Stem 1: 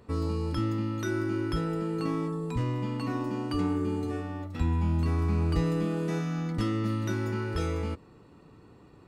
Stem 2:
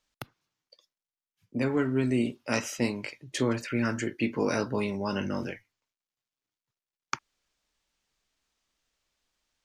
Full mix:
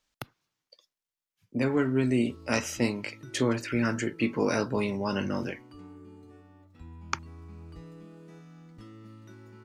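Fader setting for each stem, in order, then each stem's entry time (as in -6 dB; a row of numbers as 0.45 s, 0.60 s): -19.5 dB, +1.0 dB; 2.20 s, 0.00 s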